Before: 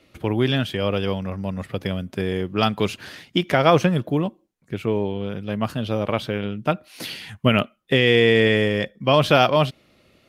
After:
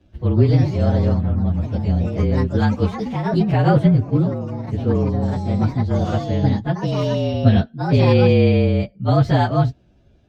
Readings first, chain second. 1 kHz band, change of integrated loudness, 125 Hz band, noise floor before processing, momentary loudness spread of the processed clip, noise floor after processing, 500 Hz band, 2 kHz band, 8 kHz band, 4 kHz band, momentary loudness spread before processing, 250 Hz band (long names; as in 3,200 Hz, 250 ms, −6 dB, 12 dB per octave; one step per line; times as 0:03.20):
−1.0 dB, +3.0 dB, +9.5 dB, −60 dBFS, 7 LU, −54 dBFS, −0.5 dB, −7.5 dB, can't be measured, −8.5 dB, 13 LU, +5.0 dB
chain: partials spread apart or drawn together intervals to 112%
delay with pitch and tempo change per echo 170 ms, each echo +3 semitones, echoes 3, each echo −6 dB
RIAA equalisation playback
level −2 dB